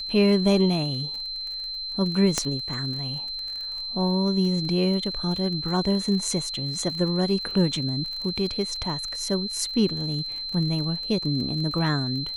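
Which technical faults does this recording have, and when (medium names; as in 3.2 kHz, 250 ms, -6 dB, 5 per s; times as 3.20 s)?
crackle 32 per s -32 dBFS
whine 4.1 kHz -30 dBFS
2.38 s: pop -9 dBFS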